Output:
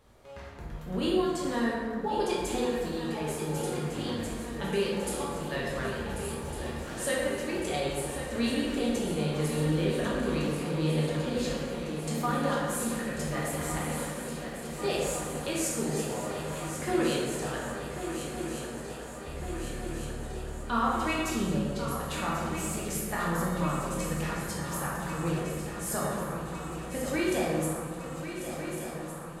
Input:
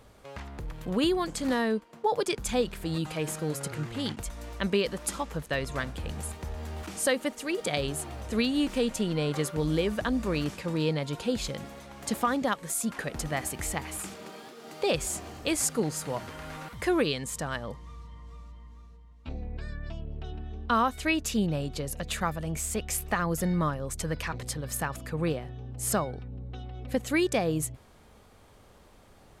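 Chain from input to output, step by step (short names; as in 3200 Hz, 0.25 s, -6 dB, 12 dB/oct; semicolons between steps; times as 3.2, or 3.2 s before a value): swung echo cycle 1.456 s, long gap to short 3:1, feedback 71%, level -10 dB; plate-style reverb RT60 1.9 s, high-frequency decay 0.5×, DRR -5.5 dB; gain -8.5 dB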